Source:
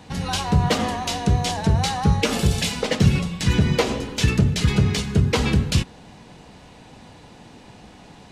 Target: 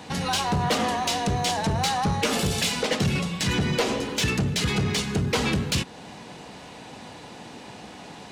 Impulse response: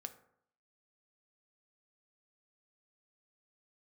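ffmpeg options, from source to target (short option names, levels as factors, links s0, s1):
-filter_complex "[0:a]highpass=f=240:p=1,asplit=2[s0][s1];[s1]acompressor=threshold=0.0251:ratio=6,volume=0.891[s2];[s0][s2]amix=inputs=2:normalize=0,asoftclip=type=tanh:threshold=0.141"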